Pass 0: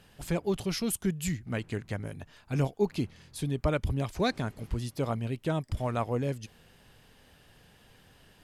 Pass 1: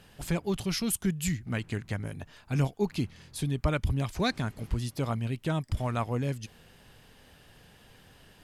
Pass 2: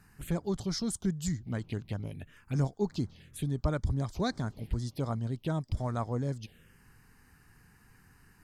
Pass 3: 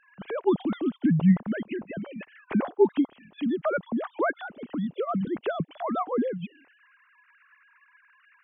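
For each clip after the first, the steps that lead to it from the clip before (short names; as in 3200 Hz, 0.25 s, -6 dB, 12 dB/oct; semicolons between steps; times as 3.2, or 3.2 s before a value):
dynamic EQ 490 Hz, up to -6 dB, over -42 dBFS, Q 0.91; gain +2.5 dB
envelope phaser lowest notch 540 Hz, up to 2700 Hz, full sweep at -26.5 dBFS; gain -2 dB
sine-wave speech; gain +6 dB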